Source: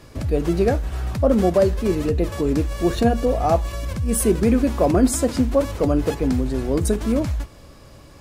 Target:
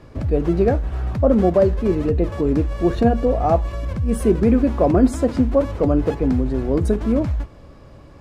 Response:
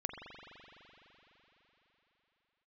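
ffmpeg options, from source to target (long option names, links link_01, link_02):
-af "lowpass=frequency=1400:poles=1,volume=2dB"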